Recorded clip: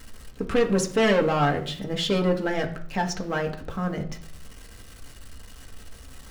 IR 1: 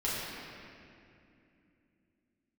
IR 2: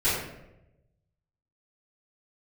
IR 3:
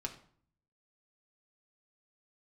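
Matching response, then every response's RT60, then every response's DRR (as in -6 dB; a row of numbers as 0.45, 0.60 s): 3; 2.6, 0.90, 0.55 s; -9.5, -15.0, 1.0 dB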